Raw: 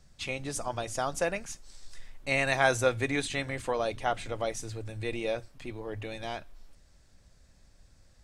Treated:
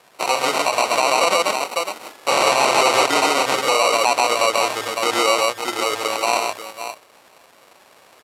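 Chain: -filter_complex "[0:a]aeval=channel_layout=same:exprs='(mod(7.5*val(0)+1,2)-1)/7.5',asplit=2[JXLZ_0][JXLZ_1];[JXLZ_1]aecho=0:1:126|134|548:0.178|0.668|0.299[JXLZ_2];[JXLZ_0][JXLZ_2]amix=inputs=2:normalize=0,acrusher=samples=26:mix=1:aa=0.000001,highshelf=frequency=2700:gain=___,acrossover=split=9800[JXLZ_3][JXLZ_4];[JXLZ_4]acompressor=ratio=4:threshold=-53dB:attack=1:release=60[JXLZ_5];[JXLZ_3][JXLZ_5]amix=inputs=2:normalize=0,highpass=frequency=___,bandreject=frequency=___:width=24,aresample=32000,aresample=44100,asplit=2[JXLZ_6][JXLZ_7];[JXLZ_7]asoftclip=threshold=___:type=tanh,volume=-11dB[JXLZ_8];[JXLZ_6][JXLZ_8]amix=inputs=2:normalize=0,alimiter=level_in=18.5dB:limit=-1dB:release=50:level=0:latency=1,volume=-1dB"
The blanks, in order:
2.5, 620, 6200, -25dB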